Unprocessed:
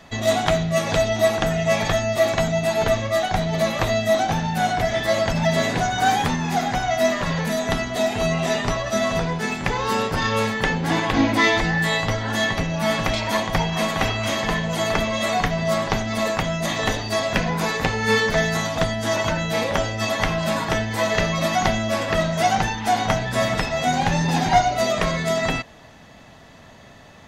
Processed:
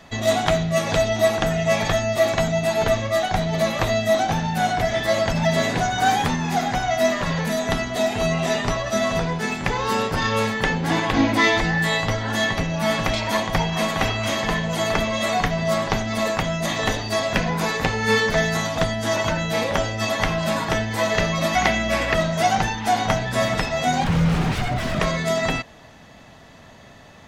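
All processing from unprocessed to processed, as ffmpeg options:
ffmpeg -i in.wav -filter_complex "[0:a]asettb=1/sr,asplit=3[link_01][link_02][link_03];[link_01]atrim=end=21.554[link_04];[link_02]atrim=start=21.55:end=22.14,asetpts=PTS-STARTPTS,afade=type=in:duration=0.004:curve=qsin,afade=type=out:start_time=0.586:duration=0.004:curve=qsin,highpass=frequency=170:width=0.5412,highpass=frequency=170:width=1.3066,equalizer=frequency=2200:width=2:gain=7,aeval=exprs='val(0)+0.0316*(sin(2*PI*60*n/s)+sin(2*PI*2*60*n/s)/2+sin(2*PI*3*60*n/s)/3+sin(2*PI*4*60*n/s)/4+sin(2*PI*5*60*n/s)/5)':channel_layout=same[link_05];[link_03]atrim=start=22.136[link_06];[link_04][link_05]acrossfade=duration=0.004:curve1=hsin:curve2=qsin[link_07];[link_07][link_06]acrossfade=duration=0.004:curve1=qsin:curve2=hsin,asettb=1/sr,asplit=3[link_08][link_09][link_10];[link_08]atrim=end=24.044[link_11];[link_09]atrim=start=24.04:end=25,asetpts=PTS-STARTPTS,afade=type=in:duration=0.004:curve=qsin,afade=type=out:start_time=0.956:duration=0.004:curve=qsin,highpass=frequency=77:width=0.5412,highpass=frequency=77:width=1.3066,aeval=exprs='0.0794*(abs(mod(val(0)/0.0794+3,4)-2)-1)':channel_layout=same,bass=frequency=250:gain=15,treble=frequency=4000:gain=-9[link_12];[link_10]atrim=start=24.996[link_13];[link_11][link_12]acrossfade=duration=0.004:curve1=hsin:curve2=qsin[link_14];[link_14][link_13]acrossfade=duration=0.004:curve1=qsin:curve2=hsin" out.wav

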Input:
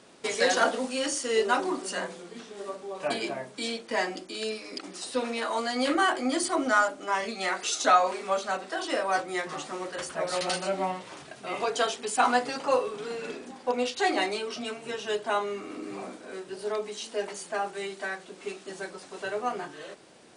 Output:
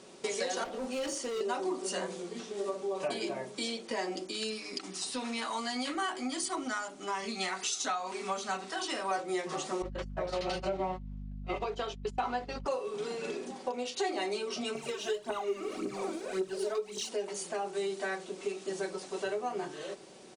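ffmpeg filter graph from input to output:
ffmpeg -i in.wav -filter_complex "[0:a]asettb=1/sr,asplit=3[link_01][link_02][link_03];[link_01]atrim=end=0.644[link_04];[link_02]atrim=start=0.64:end=1.41,asetpts=PTS-STARTPTS,afade=type=in:duration=0.004:curve=qsin,afade=type=out:start_time=0.766:duration=0.004:curve=qsin,highshelf=frequency=3500:gain=-9.5,volume=29.5dB,asoftclip=hard,volume=-29.5dB[link_05];[link_03]atrim=start=1.406[link_06];[link_04][link_05]acrossfade=duration=0.004:curve1=hsin:curve2=qsin[link_07];[link_07][link_06]acrossfade=duration=0.004:curve1=qsin:curve2=hsin,asettb=1/sr,asplit=3[link_08][link_09][link_10];[link_08]atrim=end=4.314[link_11];[link_09]atrim=start=4.31:end=9.11,asetpts=PTS-STARTPTS,afade=type=in:duration=0.004:curve=qsin,afade=type=out:start_time=4.796:duration=0.004:curve=qsin,equalizer=frequency=540:width_type=o:width=0.59:gain=-12,bandreject=frequency=350:width=7.4[link_12];[link_10]atrim=start=9.106[link_13];[link_11][link_12]acrossfade=duration=0.004:curve1=hsin:curve2=qsin[link_14];[link_14][link_13]acrossfade=duration=0.004:curve1=qsin:curve2=hsin,asettb=1/sr,asplit=3[link_15][link_16][link_17];[link_15]atrim=end=9.824[link_18];[link_16]atrim=start=9.82:end=12.66,asetpts=PTS-STARTPTS,afade=type=in:duration=0.004:curve=qsin,afade=type=out:start_time=2.836:duration=0.004:curve=qsin,lowpass=3900,agate=range=-33dB:threshold=-35dB:ratio=16:release=100:detection=peak,aeval=exprs='val(0)+0.01*(sin(2*PI*50*n/s)+sin(2*PI*2*50*n/s)/2+sin(2*PI*3*50*n/s)/3+sin(2*PI*4*50*n/s)/4+sin(2*PI*5*50*n/s)/5)':channel_layout=same[link_19];[link_17]atrim=start=12.656[link_20];[link_18][link_19]acrossfade=duration=0.004:curve1=hsin:curve2=qsin[link_21];[link_21][link_20]acrossfade=duration=0.004:curve1=qsin:curve2=hsin,asettb=1/sr,asplit=3[link_22][link_23][link_24];[link_22]atrim=end=14.754[link_25];[link_23]atrim=start=14.75:end=17.09,asetpts=PTS-STARTPTS,afade=type=in:duration=0.004:curve=qsin,afade=type=out:start_time=2.336:duration=0.004:curve=qsin,aphaser=in_gain=1:out_gain=1:delay=3.5:decay=0.72:speed=1.8:type=triangular,asplit=2[link_26][link_27];[link_27]adelay=21,volume=-12dB[link_28];[link_26][link_28]amix=inputs=2:normalize=0,atrim=end_sample=103194[link_29];[link_24]atrim=start=17.086[link_30];[link_25][link_29]acrossfade=duration=0.004:curve1=hsin:curve2=qsin[link_31];[link_31][link_30]acrossfade=duration=0.004:curve1=qsin:curve2=hsin,equalizer=frequency=400:width_type=o:width=0.67:gain=4,equalizer=frequency=1600:width_type=o:width=0.67:gain=-4,equalizer=frequency=6300:width_type=o:width=0.67:gain=3,acompressor=threshold=-32dB:ratio=5,aecho=1:1:5.3:0.35" out.wav

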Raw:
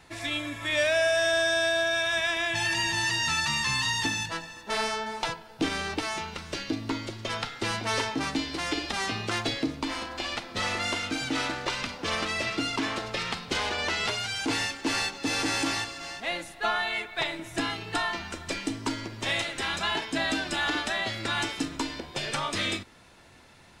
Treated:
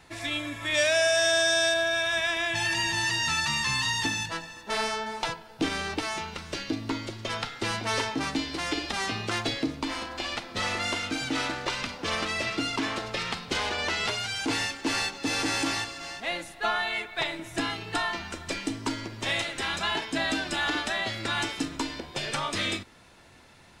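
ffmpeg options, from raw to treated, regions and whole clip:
ffmpeg -i in.wav -filter_complex "[0:a]asettb=1/sr,asplit=3[link_01][link_02][link_03];[link_01]atrim=end=0.744[link_04];[link_02]atrim=start=0.74:end=1.74,asetpts=PTS-STARTPTS,afade=type=in:duration=0.004:curve=qsin,afade=type=out:start_time=0.996:duration=0.004:curve=qsin,highpass=69,equalizer=frequency=6500:width_type=o:width=1.4:gain=8[link_05];[link_03]atrim=start=1.736[link_06];[link_04][link_05]acrossfade=duration=0.004:curve1=hsin:curve2=qsin[link_07];[link_07][link_06]acrossfade=duration=0.004:curve1=qsin:curve2=hsin" out.wav

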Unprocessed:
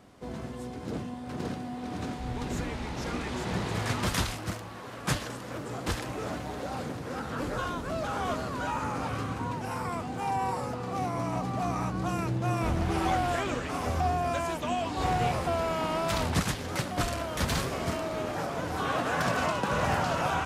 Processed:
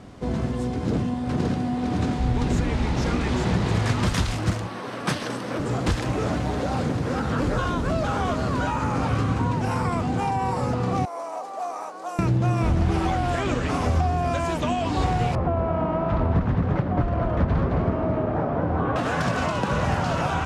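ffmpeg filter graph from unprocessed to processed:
ffmpeg -i in.wav -filter_complex "[0:a]asettb=1/sr,asplit=3[link_01][link_02][link_03];[link_01]atrim=end=4.674[link_04];[link_02]atrim=start=4.67:end=5.6,asetpts=PTS-STARTPTS,afade=type=in:duration=0.004:curve=qsin,afade=type=out:start_time=0.926:duration=0.004:curve=qsin,highpass=190,bandreject=frequency=7000:width=6.8[link_05];[link_03]atrim=start=5.596[link_06];[link_04][link_05]acrossfade=duration=0.004:curve1=hsin:curve2=qsin[link_07];[link_07][link_06]acrossfade=duration=0.004:curve1=qsin:curve2=hsin,asettb=1/sr,asplit=3[link_08][link_09][link_10];[link_08]atrim=end=11.054[link_11];[link_09]atrim=start=11.05:end=12.19,asetpts=PTS-STARTPTS,afade=type=in:duration=0.004:curve=qsin,afade=type=out:start_time=1.136:duration=0.004:curve=qsin,highpass=frequency=560:width=0.5412,highpass=frequency=560:width=1.3066,equalizer=frequency=2600:width=0.41:gain=-14[link_12];[link_10]atrim=start=12.186[link_13];[link_11][link_12]acrossfade=duration=0.004:curve1=hsin:curve2=qsin[link_14];[link_14][link_13]acrossfade=duration=0.004:curve1=qsin:curve2=hsin,asettb=1/sr,asplit=3[link_15][link_16][link_17];[link_15]atrim=end=15.354[link_18];[link_16]atrim=start=15.35:end=18.96,asetpts=PTS-STARTPTS,afade=type=in:duration=0.004:curve=qsin,afade=type=out:start_time=3.606:duration=0.004:curve=qsin,lowpass=1200,aecho=1:1:216:0.531,atrim=end_sample=159201[link_19];[link_17]atrim=start=18.956[link_20];[link_18][link_19]acrossfade=duration=0.004:curve1=hsin:curve2=qsin[link_21];[link_21][link_20]acrossfade=duration=0.004:curve1=qsin:curve2=hsin,acompressor=threshold=-31dB:ratio=6,lowpass=8600,lowshelf=frequency=260:gain=8,volume=8dB" out.wav

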